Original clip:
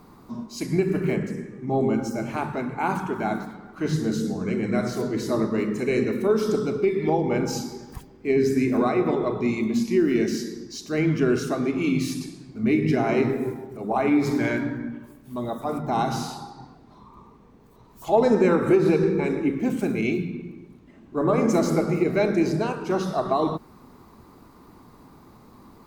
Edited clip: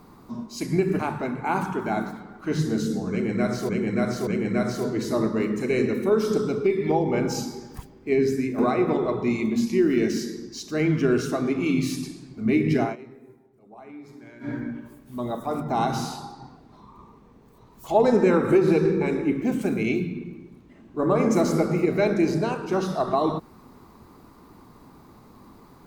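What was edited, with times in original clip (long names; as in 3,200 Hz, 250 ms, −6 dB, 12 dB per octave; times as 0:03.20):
0:00.99–0:02.33: remove
0:04.45–0:05.03: repeat, 3 plays
0:08.34–0:08.76: fade out, to −8 dB
0:13.01–0:14.71: duck −22 dB, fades 0.13 s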